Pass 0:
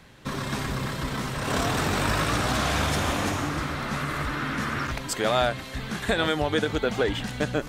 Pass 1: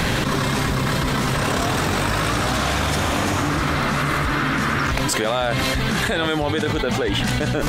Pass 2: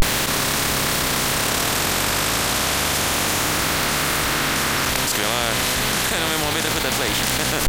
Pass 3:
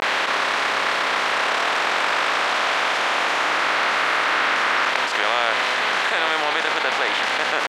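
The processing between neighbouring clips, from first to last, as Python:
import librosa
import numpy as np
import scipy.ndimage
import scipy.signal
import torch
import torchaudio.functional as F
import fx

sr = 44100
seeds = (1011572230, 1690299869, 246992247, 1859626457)

y1 = fx.env_flatten(x, sr, amount_pct=100)
y2 = fx.spec_flatten(y1, sr, power=0.41)
y2 = fx.vibrato(y2, sr, rate_hz=0.32, depth_cents=74.0)
y3 = fx.bandpass_edges(y2, sr, low_hz=650.0, high_hz=2500.0)
y3 = F.gain(torch.from_numpy(y3), 5.0).numpy()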